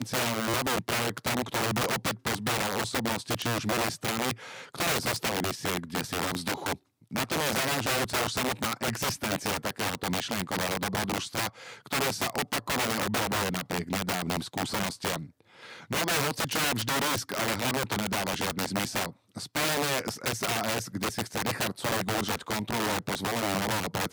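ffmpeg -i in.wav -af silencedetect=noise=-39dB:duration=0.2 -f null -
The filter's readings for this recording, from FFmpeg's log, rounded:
silence_start: 6.75
silence_end: 7.11 | silence_duration: 0.36
silence_start: 15.27
silence_end: 15.63 | silence_duration: 0.37
silence_start: 19.11
silence_end: 19.36 | silence_duration: 0.25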